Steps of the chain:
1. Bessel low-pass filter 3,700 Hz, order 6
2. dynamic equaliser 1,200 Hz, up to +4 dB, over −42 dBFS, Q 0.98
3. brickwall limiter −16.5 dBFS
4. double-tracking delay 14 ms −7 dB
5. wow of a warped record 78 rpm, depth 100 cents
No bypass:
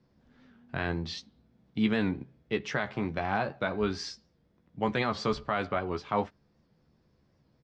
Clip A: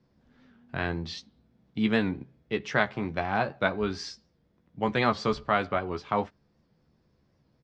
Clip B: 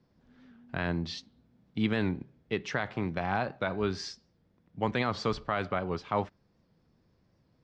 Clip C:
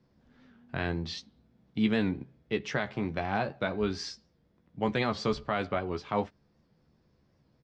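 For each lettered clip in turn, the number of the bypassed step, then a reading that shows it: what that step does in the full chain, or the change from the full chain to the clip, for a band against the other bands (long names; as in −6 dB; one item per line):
3, change in crest factor +6.0 dB
4, 125 Hz band +2.5 dB
2, 1 kHz band −2.0 dB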